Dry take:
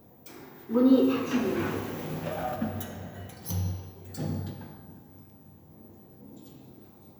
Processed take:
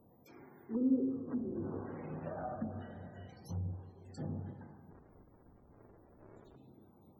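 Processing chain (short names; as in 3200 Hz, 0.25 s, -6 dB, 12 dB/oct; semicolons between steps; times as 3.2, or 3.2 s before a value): 4.91–6.56 cycle switcher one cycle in 2, inverted; treble ducked by the level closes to 320 Hz, closed at -24 dBFS; loudest bins only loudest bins 64; ending taper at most 520 dB/s; gain -8.5 dB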